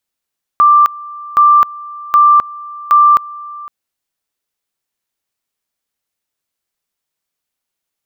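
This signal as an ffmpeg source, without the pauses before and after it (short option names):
-f lavfi -i "aevalsrc='pow(10,(-4-21.5*gte(mod(t,0.77),0.26))/20)*sin(2*PI*1180*t)':d=3.08:s=44100"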